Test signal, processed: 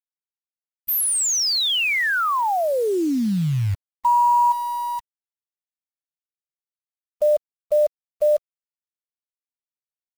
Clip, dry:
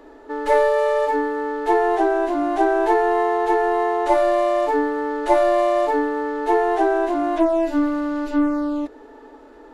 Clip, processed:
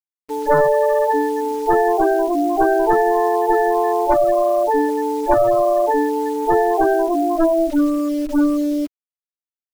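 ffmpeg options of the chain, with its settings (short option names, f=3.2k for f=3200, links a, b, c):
-af "aeval=exprs='0.631*(cos(1*acos(clip(val(0)/0.631,-1,1)))-cos(1*PI/2))+0.0282*(cos(3*acos(clip(val(0)/0.631,-1,1)))-cos(3*PI/2))+0.1*(cos(5*acos(clip(val(0)/0.631,-1,1)))-cos(5*PI/2))+0.178*(cos(6*acos(clip(val(0)/0.631,-1,1)))-cos(6*PI/2))+0.112*(cos(8*acos(clip(val(0)/0.631,-1,1)))-cos(8*PI/2))':c=same,afftfilt=real='re*gte(hypot(re,im),0.282)':imag='im*gte(hypot(re,im),0.282)':win_size=1024:overlap=0.75,acrusher=bits=7:dc=4:mix=0:aa=0.000001"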